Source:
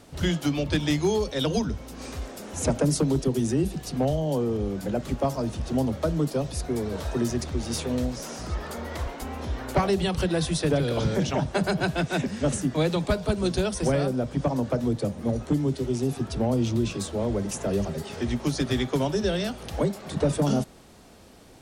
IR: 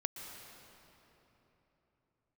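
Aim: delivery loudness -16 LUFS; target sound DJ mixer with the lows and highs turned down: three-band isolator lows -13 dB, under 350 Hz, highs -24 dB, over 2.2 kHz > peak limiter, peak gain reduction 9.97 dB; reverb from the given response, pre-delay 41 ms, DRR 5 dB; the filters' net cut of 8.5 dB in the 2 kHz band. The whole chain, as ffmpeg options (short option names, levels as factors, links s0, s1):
-filter_complex "[0:a]equalizer=f=2000:t=o:g=-8,asplit=2[s0][s1];[1:a]atrim=start_sample=2205,adelay=41[s2];[s1][s2]afir=irnorm=-1:irlink=0,volume=0.531[s3];[s0][s3]amix=inputs=2:normalize=0,acrossover=split=350 2200:gain=0.224 1 0.0631[s4][s5][s6];[s4][s5][s6]amix=inputs=3:normalize=0,volume=8.91,alimiter=limit=0.501:level=0:latency=1"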